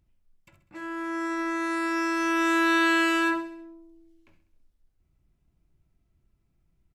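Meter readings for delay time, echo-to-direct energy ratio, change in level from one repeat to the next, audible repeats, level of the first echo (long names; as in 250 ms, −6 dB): 66 ms, −11.5 dB, −5.5 dB, 4, −13.0 dB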